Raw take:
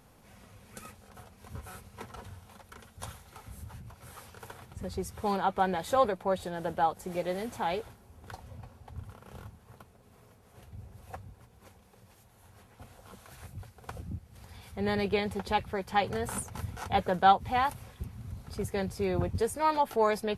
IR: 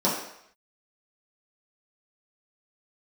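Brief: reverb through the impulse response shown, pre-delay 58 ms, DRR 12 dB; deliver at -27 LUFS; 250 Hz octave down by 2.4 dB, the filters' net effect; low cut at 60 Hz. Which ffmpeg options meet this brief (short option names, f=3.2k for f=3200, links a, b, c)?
-filter_complex "[0:a]highpass=60,equalizer=f=250:t=o:g=-3.5,asplit=2[a][b];[1:a]atrim=start_sample=2205,adelay=58[c];[b][c]afir=irnorm=-1:irlink=0,volume=-26dB[d];[a][d]amix=inputs=2:normalize=0,volume=3.5dB"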